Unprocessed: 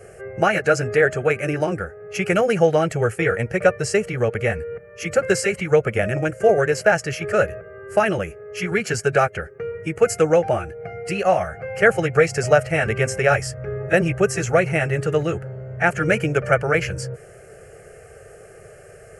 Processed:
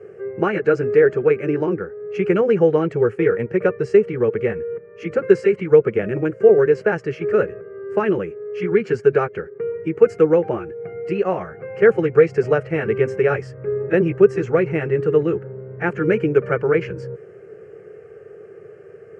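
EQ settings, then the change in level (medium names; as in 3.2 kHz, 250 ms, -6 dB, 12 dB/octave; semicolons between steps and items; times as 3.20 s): band-pass 170–2700 Hz; resonant low shelf 520 Hz +7 dB, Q 3; peaking EQ 1 kHz +11 dB 0.36 oct; -5.0 dB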